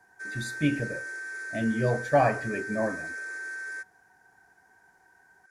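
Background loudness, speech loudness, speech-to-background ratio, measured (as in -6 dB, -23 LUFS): -36.0 LUFS, -28.5 LUFS, 7.5 dB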